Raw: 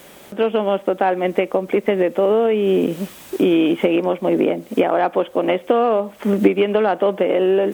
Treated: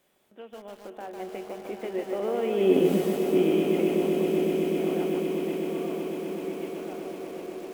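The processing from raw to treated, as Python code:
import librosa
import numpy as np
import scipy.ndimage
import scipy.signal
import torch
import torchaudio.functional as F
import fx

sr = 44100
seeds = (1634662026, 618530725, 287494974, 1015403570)

y = fx.doppler_pass(x, sr, speed_mps=9, closest_m=1.7, pass_at_s=2.9)
y = fx.comb_fb(y, sr, f0_hz=370.0, decay_s=0.32, harmonics='all', damping=0.0, mix_pct=70)
y = fx.echo_swell(y, sr, ms=126, loudest=8, wet_db=-11)
y = fx.echo_crushed(y, sr, ms=150, feedback_pct=35, bits=9, wet_db=-4)
y = y * librosa.db_to_amplitude(6.5)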